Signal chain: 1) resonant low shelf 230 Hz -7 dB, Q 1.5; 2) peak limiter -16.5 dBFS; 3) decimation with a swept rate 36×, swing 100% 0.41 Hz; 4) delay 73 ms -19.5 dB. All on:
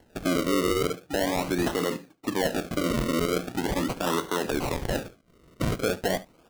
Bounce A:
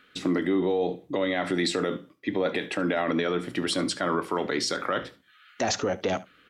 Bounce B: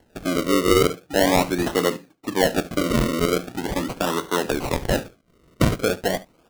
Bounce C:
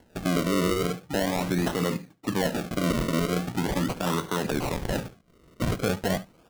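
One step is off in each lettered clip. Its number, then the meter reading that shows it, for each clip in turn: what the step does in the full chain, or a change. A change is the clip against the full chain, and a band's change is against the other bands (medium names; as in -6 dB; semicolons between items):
3, 125 Hz band -4.5 dB; 2, mean gain reduction 3.0 dB; 1, 125 Hz band +4.5 dB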